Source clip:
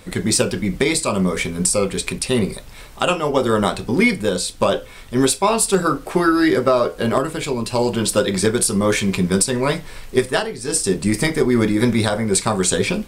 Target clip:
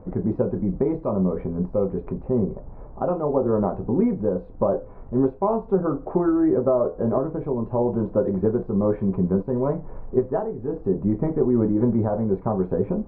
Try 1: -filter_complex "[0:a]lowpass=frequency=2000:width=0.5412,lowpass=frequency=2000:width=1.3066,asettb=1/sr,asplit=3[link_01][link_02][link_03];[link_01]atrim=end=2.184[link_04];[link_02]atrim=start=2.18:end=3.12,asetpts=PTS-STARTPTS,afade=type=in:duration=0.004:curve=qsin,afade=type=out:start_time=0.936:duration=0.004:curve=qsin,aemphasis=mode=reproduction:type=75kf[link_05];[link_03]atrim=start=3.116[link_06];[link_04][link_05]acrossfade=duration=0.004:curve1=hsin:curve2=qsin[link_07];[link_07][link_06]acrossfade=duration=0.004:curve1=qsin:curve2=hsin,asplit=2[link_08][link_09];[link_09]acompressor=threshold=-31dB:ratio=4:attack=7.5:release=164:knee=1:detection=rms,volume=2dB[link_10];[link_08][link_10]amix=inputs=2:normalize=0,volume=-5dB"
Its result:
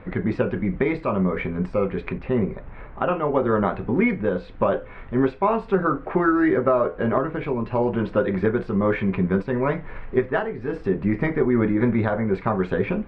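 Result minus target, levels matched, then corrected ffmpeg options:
2,000 Hz band +19.5 dB
-filter_complex "[0:a]lowpass=frequency=900:width=0.5412,lowpass=frequency=900:width=1.3066,asettb=1/sr,asplit=3[link_01][link_02][link_03];[link_01]atrim=end=2.184[link_04];[link_02]atrim=start=2.18:end=3.12,asetpts=PTS-STARTPTS,afade=type=in:duration=0.004:curve=qsin,afade=type=out:start_time=0.936:duration=0.004:curve=qsin,aemphasis=mode=reproduction:type=75kf[link_05];[link_03]atrim=start=3.116[link_06];[link_04][link_05]acrossfade=duration=0.004:curve1=hsin:curve2=qsin[link_07];[link_07][link_06]acrossfade=duration=0.004:curve1=qsin:curve2=hsin,asplit=2[link_08][link_09];[link_09]acompressor=threshold=-31dB:ratio=4:attack=7.5:release=164:knee=1:detection=rms,volume=2dB[link_10];[link_08][link_10]amix=inputs=2:normalize=0,volume=-5dB"

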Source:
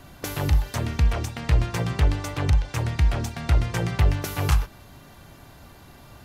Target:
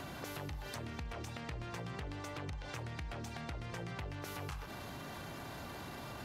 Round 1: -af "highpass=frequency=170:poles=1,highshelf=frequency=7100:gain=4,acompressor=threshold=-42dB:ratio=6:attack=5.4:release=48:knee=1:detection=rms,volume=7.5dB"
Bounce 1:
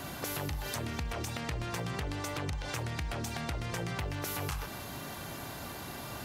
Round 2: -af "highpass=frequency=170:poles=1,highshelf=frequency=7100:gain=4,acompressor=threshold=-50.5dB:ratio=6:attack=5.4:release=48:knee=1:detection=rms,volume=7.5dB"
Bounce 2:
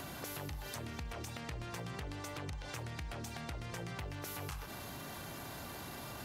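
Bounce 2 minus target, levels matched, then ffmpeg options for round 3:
8,000 Hz band +4.5 dB
-af "highpass=frequency=170:poles=1,highshelf=frequency=7100:gain=-7.5,acompressor=threshold=-50.5dB:ratio=6:attack=5.4:release=48:knee=1:detection=rms,volume=7.5dB"

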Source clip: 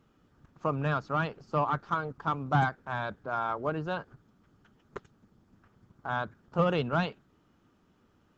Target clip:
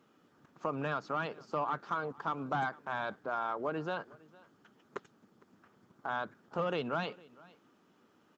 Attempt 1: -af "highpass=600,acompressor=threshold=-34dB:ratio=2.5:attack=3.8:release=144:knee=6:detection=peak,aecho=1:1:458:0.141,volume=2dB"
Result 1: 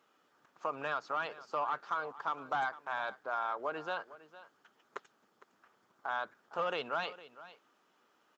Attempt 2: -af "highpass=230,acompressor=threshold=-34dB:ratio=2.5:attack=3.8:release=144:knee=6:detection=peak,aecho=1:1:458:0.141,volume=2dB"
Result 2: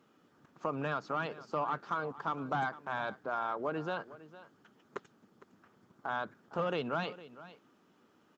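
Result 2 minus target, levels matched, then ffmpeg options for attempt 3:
echo-to-direct +6.5 dB
-af "highpass=230,acompressor=threshold=-34dB:ratio=2.5:attack=3.8:release=144:knee=6:detection=peak,aecho=1:1:458:0.0668,volume=2dB"

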